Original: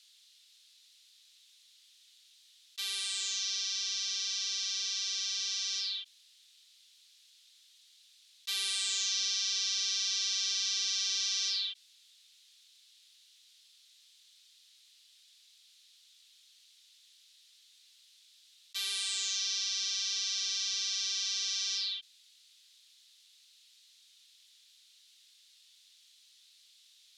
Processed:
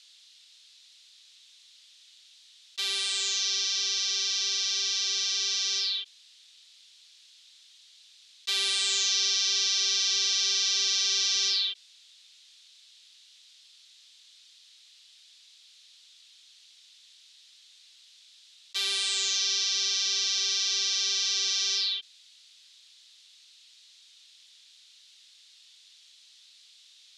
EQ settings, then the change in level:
band-pass filter 170–7,800 Hz
parametric band 420 Hz +9.5 dB 1.5 octaves
+6.5 dB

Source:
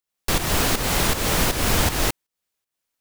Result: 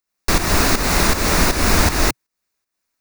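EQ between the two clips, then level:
thirty-one-band graphic EQ 125 Hz −12 dB, 500 Hz −5 dB, 800 Hz −3 dB, 3,150 Hz −11 dB, 8,000 Hz −4 dB, 12,500 Hz −11 dB
+6.5 dB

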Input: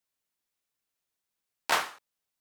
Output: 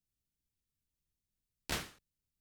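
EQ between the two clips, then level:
guitar amp tone stack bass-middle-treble 10-0-1
low-shelf EQ 350 Hz +10.5 dB
+13.5 dB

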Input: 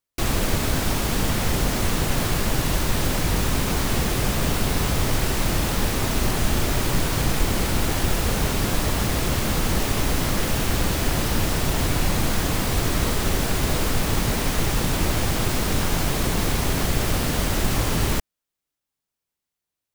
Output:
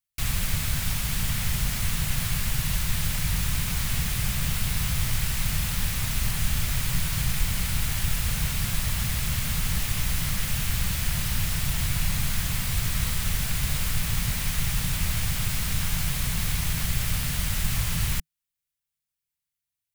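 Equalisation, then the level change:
drawn EQ curve 160 Hz 0 dB, 320 Hz −21 dB, 2,200 Hz 0 dB, 5,700 Hz −1 dB, 11,000 Hz +3 dB
−3.0 dB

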